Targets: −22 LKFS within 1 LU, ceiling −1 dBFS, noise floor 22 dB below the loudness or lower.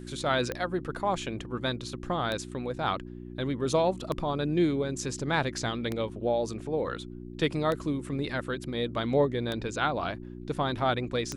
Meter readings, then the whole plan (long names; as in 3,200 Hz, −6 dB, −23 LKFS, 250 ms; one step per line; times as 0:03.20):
number of clicks 7; mains hum 60 Hz; hum harmonics up to 360 Hz; level of the hum −39 dBFS; integrated loudness −30.5 LKFS; sample peak −12.5 dBFS; target loudness −22.0 LKFS
→ click removal
hum removal 60 Hz, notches 6
level +8.5 dB